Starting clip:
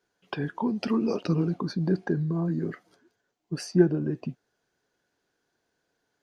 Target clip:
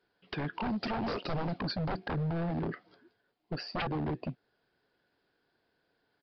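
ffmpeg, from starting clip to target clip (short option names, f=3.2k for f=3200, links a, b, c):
-filter_complex "[0:a]asettb=1/sr,asplit=3[a][b][c];[a]atrim=end=0.534[d];[b]atrim=start=0.53:end=1.76,asetpts=PTS-STARTPTS,afade=t=in:d=0.004:c=qsin,afade=t=out:st=1.226:d=0.004:c=qsin,highshelf=f=3.3k:g=10[e];[c]atrim=start=1.756[f];[d][e]acrossfade=d=0.004:c1=hsin:c2=qsin[g];[g][f]acrossfade=d=0.004:c1=qsin:c2=hsin,asplit=2[h][i];[i]acompressor=threshold=-35dB:ratio=6,volume=-3dB[j];[h][j]amix=inputs=2:normalize=0,aeval=exprs='0.0596*(abs(mod(val(0)/0.0596+3,4)-2)-1)':c=same,aresample=11025,aresample=44100,volume=-3.5dB"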